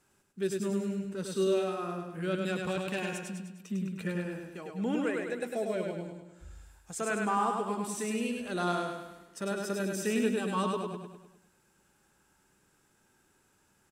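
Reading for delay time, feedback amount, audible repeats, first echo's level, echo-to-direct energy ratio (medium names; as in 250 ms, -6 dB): 102 ms, 50%, 6, -3.5 dB, -2.5 dB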